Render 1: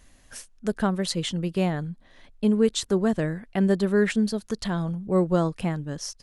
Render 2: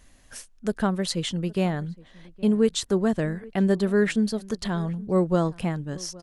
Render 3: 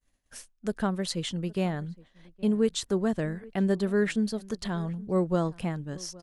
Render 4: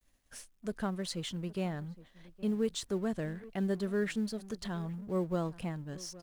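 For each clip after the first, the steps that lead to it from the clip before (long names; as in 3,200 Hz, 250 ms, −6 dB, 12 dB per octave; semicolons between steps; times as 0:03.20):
slap from a distant wall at 140 metres, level −22 dB
downward expander −43 dBFS; level −4 dB
mu-law and A-law mismatch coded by mu; level −7.5 dB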